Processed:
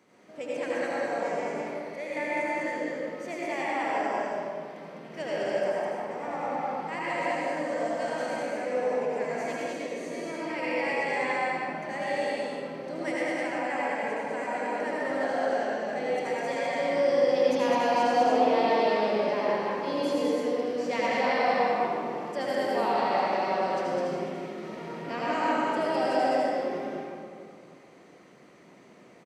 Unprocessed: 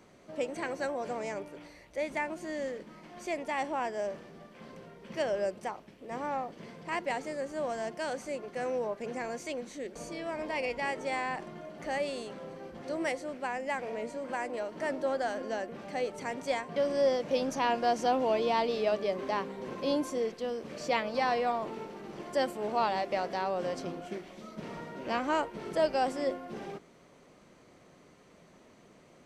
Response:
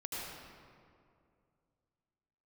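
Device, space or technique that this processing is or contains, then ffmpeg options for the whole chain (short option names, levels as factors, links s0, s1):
stadium PA: -filter_complex "[0:a]highpass=160,equalizer=f=2000:t=o:w=0.45:g=4,aecho=1:1:204.1|253.6:0.794|0.251[s0];[1:a]atrim=start_sample=2205[s1];[s0][s1]afir=irnorm=-1:irlink=0"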